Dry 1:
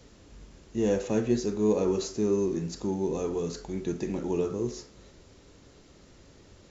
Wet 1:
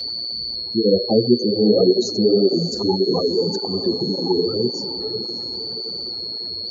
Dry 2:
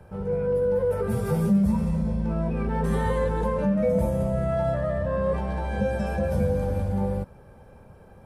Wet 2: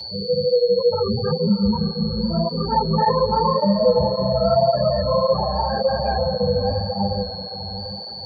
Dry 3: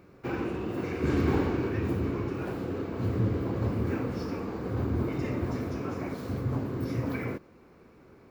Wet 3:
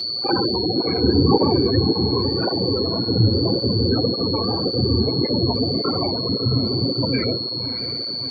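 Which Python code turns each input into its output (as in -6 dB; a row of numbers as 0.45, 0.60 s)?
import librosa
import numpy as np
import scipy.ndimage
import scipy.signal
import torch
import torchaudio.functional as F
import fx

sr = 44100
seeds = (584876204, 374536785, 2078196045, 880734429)

y = scipy.signal.sosfilt(scipy.signal.butter(2, 75.0, 'highpass', fs=sr, output='sos'), x)
y = fx.spec_gate(y, sr, threshold_db=-15, keep='strong')
y = fx.peak_eq(y, sr, hz=890.0, db=11.5, octaves=1.2)
y = y + 10.0 ** (-32.0 / 20.0) * np.sin(2.0 * np.pi * 4400.0 * np.arange(len(y)) / sr)
y = fx.echo_diffused(y, sr, ms=631, feedback_pct=46, wet_db=-11)
y = fx.flanger_cancel(y, sr, hz=1.8, depth_ms=7.4)
y = y * 10.0 ** (-20 / 20.0) / np.sqrt(np.mean(np.square(y)))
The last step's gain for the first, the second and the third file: +10.5, +5.0, +12.0 dB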